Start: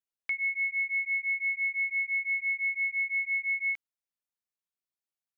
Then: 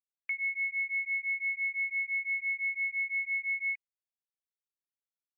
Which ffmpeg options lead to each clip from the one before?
-af "afftdn=nr=33:nf=-49,volume=0.75"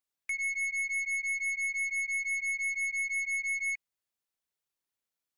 -af "aeval=exprs='0.0473*(cos(1*acos(clip(val(0)/0.0473,-1,1)))-cos(1*PI/2))+0.000596*(cos(2*acos(clip(val(0)/0.0473,-1,1)))-cos(2*PI/2))+0.00944*(cos(5*acos(clip(val(0)/0.0473,-1,1)))-cos(5*PI/2))+0.00119*(cos(6*acos(clip(val(0)/0.0473,-1,1)))-cos(6*PI/2))':c=same"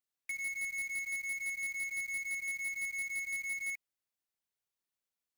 -af "acrusher=bits=2:mode=log:mix=0:aa=0.000001,volume=0.531"

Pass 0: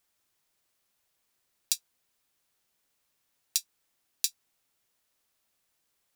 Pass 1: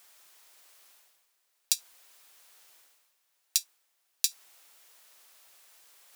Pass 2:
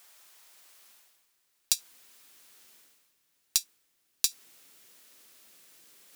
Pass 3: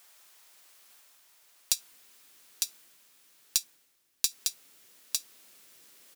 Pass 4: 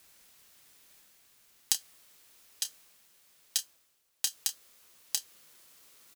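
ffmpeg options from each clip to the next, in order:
-af "highpass=520,areverse,acompressor=mode=upward:threshold=0.00501:ratio=2.5,areverse,volume=1.26"
-filter_complex "[0:a]asubboost=boost=10:cutoff=250,asplit=2[s0][s1];[s1]aeval=exprs='clip(val(0),-1,0.0668)':c=same,volume=0.316[s2];[s0][s2]amix=inputs=2:normalize=0,volume=0.891"
-af "aecho=1:1:904:0.668,volume=0.891"
-filter_complex "[0:a]aeval=exprs='val(0)*sin(2*PI*820*n/s)':c=same,asplit=2[s0][s1];[s1]adelay=29,volume=0.282[s2];[s0][s2]amix=inputs=2:normalize=0,volume=1.12"

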